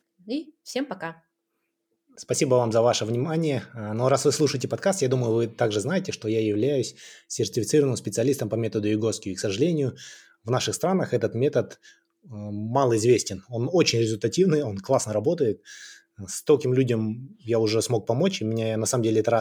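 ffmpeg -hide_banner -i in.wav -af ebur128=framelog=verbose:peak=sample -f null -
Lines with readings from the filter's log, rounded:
Integrated loudness:
  I:         -24.5 LUFS
  Threshold: -35.0 LUFS
Loudness range:
  LRA:         2.8 LU
  Threshold: -45.0 LUFS
  LRA low:   -26.3 LUFS
  LRA high:  -23.5 LUFS
Sample peak:
  Peak:       -6.0 dBFS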